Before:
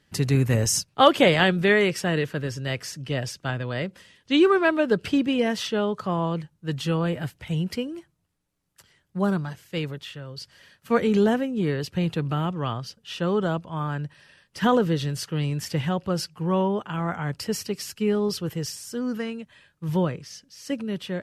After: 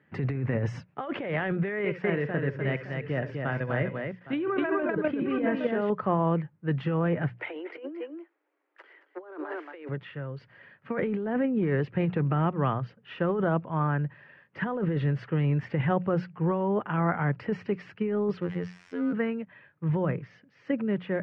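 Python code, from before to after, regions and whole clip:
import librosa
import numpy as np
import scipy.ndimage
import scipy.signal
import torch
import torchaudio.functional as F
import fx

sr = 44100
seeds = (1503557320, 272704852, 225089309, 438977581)

y = fx.chain(x, sr, fx.level_steps(step_db=10),
    fx.echo_multitap(ms=(66, 68, 250, 813, 838), db=(-16.5, -15.0, -4.5, -16.0, -18.5)), at=(1.79, 5.9))
y = fx.chain(y, sr, fx.steep_highpass(hz=290.0, slope=96),
    fx.echo_single(ms=225, db=-14.0),
    fx.over_compress(threshold_db=-41.0, ratio=-1.0), at=(7.37, 9.89))
y = fx.chain(y, sr, fx.crossing_spikes(level_db=-25.0),
    fx.robotise(hz=88.4), at=(18.41, 19.13))
y = scipy.signal.sosfilt(scipy.signal.cheby1(3, 1.0, [110.0, 2100.0], 'bandpass', fs=sr, output='sos'), y)
y = fx.hum_notches(y, sr, base_hz=60, count=3)
y = fx.over_compress(y, sr, threshold_db=-26.0, ratio=-1.0)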